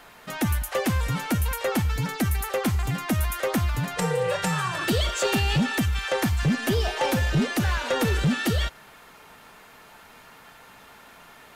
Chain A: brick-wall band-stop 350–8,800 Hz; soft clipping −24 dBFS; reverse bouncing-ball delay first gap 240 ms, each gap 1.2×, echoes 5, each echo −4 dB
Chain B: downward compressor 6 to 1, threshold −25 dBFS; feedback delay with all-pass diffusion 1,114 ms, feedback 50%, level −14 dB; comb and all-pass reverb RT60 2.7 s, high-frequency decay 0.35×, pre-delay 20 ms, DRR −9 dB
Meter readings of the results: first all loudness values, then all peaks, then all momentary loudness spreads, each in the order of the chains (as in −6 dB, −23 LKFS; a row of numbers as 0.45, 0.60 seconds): −29.5, −19.5 LKFS; −18.0, −6.0 dBFS; 11, 15 LU